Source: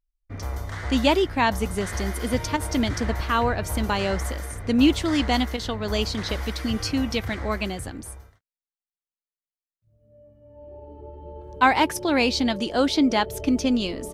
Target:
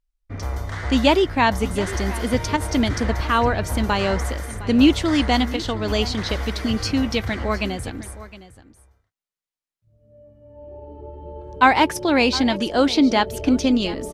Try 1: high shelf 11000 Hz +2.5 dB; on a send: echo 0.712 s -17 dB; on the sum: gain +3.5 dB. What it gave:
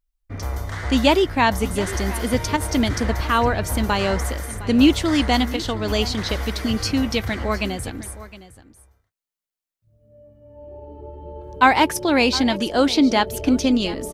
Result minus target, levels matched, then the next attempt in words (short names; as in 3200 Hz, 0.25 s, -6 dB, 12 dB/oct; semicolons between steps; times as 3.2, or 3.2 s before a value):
8000 Hz band +3.0 dB
high shelf 11000 Hz -9 dB; on a send: echo 0.712 s -17 dB; on the sum: gain +3.5 dB